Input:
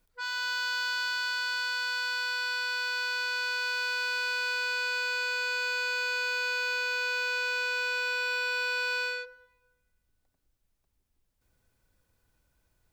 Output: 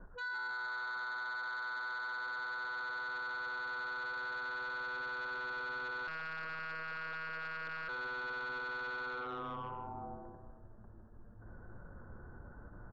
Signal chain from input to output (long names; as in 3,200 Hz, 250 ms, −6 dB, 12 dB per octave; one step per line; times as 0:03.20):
Butterworth low-pass 1,700 Hz 96 dB per octave
echo with shifted repeats 154 ms, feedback 56%, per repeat −120 Hz, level −7 dB
flanger 0.37 Hz, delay 4.8 ms, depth 9.6 ms, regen +88%
on a send at −20.5 dB: parametric band 690 Hz +14.5 dB 1.3 octaves + convolution reverb RT60 1.6 s, pre-delay 6 ms
on the sum: downward compressor 20 to 1, threshold −49 dBFS, peak gain reduction 16 dB
0:06.07–0:07.89: one-pitch LPC vocoder at 8 kHz 160 Hz
in parallel at −4 dB: sine wavefolder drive 11 dB, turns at −38 dBFS
on the sum: brickwall limiter −49 dBFS, peak gain reduction 10.5 dB
level that may rise only so fast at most 190 dB per second
level +12 dB